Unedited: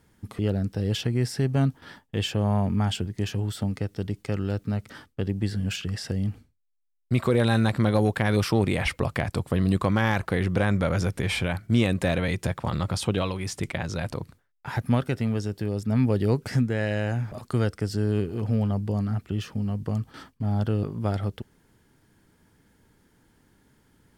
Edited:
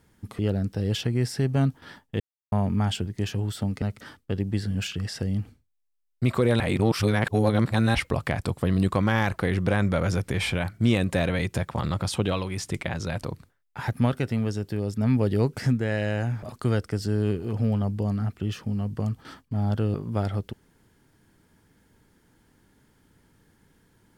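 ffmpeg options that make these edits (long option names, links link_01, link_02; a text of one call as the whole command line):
ffmpeg -i in.wav -filter_complex "[0:a]asplit=6[link_01][link_02][link_03][link_04][link_05][link_06];[link_01]atrim=end=2.2,asetpts=PTS-STARTPTS,afade=type=out:start_time=2.196:duration=0.004:curve=hsin[link_07];[link_02]atrim=start=2.2:end=2.52,asetpts=PTS-STARTPTS,volume=0[link_08];[link_03]atrim=start=2.52:end=3.822,asetpts=PTS-STARTPTS,afade=type=in:duration=0.004:curve=hsin[link_09];[link_04]atrim=start=4.708:end=7.492[link_10];[link_05]atrim=start=7.488:end=8.842,asetpts=PTS-STARTPTS,areverse[link_11];[link_06]atrim=start=8.838[link_12];[link_07][link_08][link_09]concat=n=3:v=0:a=1[link_13];[link_13][link_10]acrossfade=duration=0.004:curve1=hsin:curve2=hsin[link_14];[link_14][link_11]acrossfade=duration=0.004:curve1=hsin:curve2=hsin[link_15];[link_15][link_12]acrossfade=duration=0.004:curve1=hsin:curve2=hsin" out.wav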